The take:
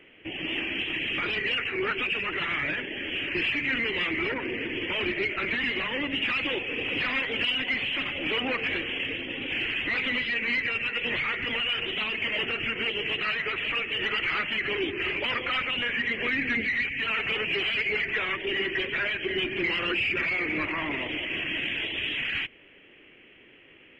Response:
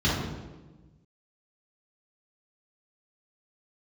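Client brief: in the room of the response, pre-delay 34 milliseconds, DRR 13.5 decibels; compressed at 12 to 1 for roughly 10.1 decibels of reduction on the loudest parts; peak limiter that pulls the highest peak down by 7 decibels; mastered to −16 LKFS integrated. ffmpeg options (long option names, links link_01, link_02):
-filter_complex "[0:a]acompressor=threshold=-34dB:ratio=12,alimiter=level_in=7.5dB:limit=-24dB:level=0:latency=1,volume=-7.5dB,asplit=2[link_01][link_02];[1:a]atrim=start_sample=2205,adelay=34[link_03];[link_02][link_03]afir=irnorm=-1:irlink=0,volume=-27.5dB[link_04];[link_01][link_04]amix=inputs=2:normalize=0,volume=21.5dB"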